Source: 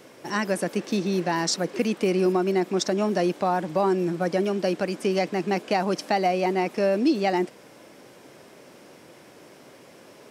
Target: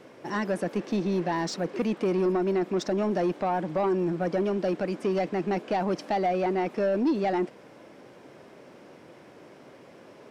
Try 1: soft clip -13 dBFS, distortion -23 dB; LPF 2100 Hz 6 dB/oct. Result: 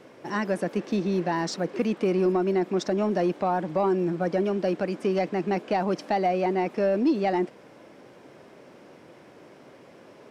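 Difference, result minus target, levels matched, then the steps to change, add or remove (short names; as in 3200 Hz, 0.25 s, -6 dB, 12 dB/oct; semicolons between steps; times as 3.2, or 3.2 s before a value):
soft clip: distortion -8 dB
change: soft clip -19 dBFS, distortion -15 dB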